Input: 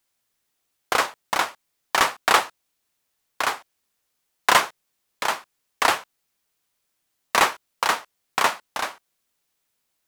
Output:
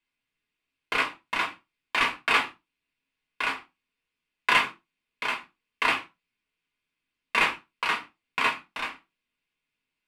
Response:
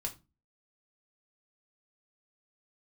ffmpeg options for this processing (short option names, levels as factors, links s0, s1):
-filter_complex "[0:a]equalizer=f=100:t=o:w=0.67:g=-4,equalizer=f=250:t=o:w=0.67:g=7,equalizer=f=630:t=o:w=0.67:g=-7,equalizer=f=2500:t=o:w=0.67:g=11,equalizer=f=6300:t=o:w=0.67:g=-8,equalizer=f=16000:t=o:w=0.67:g=-7,adynamicsmooth=sensitivity=7:basefreq=7300[s0];[1:a]atrim=start_sample=2205,afade=t=out:st=0.22:d=0.01,atrim=end_sample=10143[s1];[s0][s1]afir=irnorm=-1:irlink=0,volume=0.473"